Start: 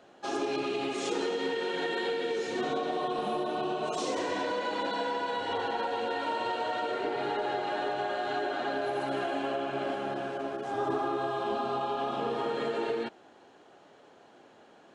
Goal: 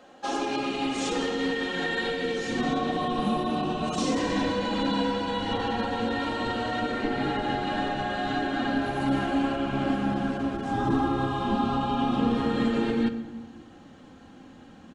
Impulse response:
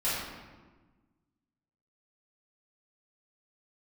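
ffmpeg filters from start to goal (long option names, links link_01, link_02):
-filter_complex "[0:a]asubboost=boost=10:cutoff=170,aecho=1:1:3.8:0.56,asplit=2[link_01][link_02];[link_02]equalizer=frequency=89:width_type=o:width=1.5:gain=10[link_03];[1:a]atrim=start_sample=2205[link_04];[link_03][link_04]afir=irnorm=-1:irlink=0,volume=-19dB[link_05];[link_01][link_05]amix=inputs=2:normalize=0,volume=3dB"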